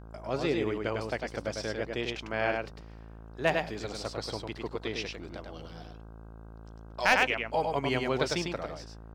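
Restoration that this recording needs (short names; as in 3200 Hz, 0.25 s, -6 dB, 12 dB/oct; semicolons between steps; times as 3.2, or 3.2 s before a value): clip repair -12.5 dBFS; de-hum 55.2 Hz, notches 29; inverse comb 0.101 s -4 dB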